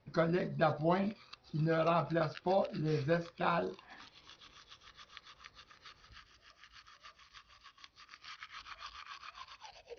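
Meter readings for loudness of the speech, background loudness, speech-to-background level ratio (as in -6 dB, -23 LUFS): -34.0 LUFS, -53.5 LUFS, 19.5 dB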